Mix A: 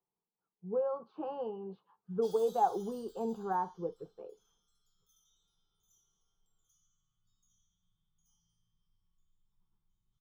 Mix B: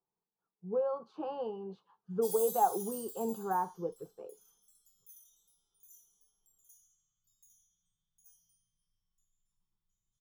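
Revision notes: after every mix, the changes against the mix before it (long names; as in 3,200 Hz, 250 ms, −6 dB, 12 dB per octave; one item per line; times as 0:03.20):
background −7.5 dB
master: remove high-frequency loss of the air 230 metres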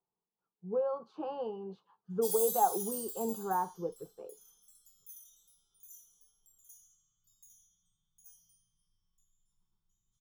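background +5.0 dB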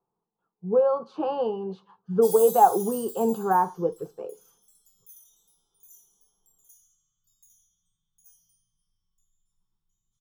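speech +10.5 dB
reverb: on, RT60 0.45 s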